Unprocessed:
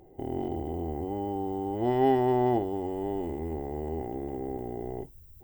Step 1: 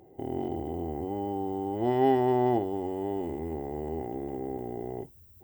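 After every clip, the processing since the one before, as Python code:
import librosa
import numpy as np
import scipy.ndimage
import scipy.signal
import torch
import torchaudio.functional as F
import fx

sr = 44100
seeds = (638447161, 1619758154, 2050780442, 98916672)

y = scipy.signal.sosfilt(scipy.signal.butter(2, 82.0, 'highpass', fs=sr, output='sos'), x)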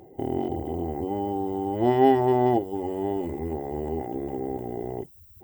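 y = fx.dereverb_blind(x, sr, rt60_s=0.75)
y = y * librosa.db_to_amplitude(6.5)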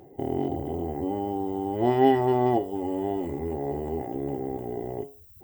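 y = fx.comb_fb(x, sr, f0_hz=140.0, decay_s=0.38, harmonics='all', damping=0.0, mix_pct=70)
y = y * librosa.db_to_amplitude(7.5)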